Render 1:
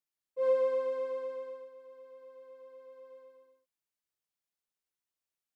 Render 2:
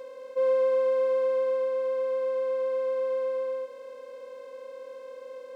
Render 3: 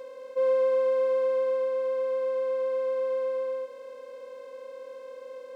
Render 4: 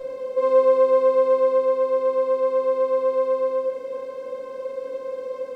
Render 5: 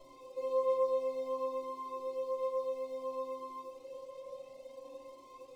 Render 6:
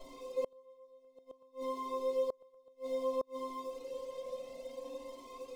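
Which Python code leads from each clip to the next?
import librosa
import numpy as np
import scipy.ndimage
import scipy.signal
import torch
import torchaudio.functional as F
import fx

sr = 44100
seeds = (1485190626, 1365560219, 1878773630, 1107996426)

y1 = fx.bin_compress(x, sr, power=0.2)
y1 = y1 * 10.0 ** (1.5 / 20.0)
y2 = y1
y3 = fx.low_shelf(y2, sr, hz=460.0, db=10.5)
y3 = fx.room_shoebox(y3, sr, seeds[0], volume_m3=270.0, walls='furnished', distance_m=5.2)
y3 = y3 * 10.0 ** (-3.5 / 20.0)
y4 = np.sign(y3) * np.maximum(np.abs(y3) - 10.0 ** (-49.5 / 20.0), 0.0)
y4 = fx.fixed_phaser(y4, sr, hz=310.0, stages=8)
y4 = fx.comb_cascade(y4, sr, direction='rising', hz=0.58)
y4 = y4 * 10.0 ** (-4.5 / 20.0)
y5 = y4 + 0.69 * np.pad(y4, (int(4.4 * sr / 1000.0), 0))[:len(y4)]
y5 = fx.gate_flip(y5, sr, shuts_db=-30.0, range_db=-32)
y5 = y5 * 10.0 ** (5.0 / 20.0)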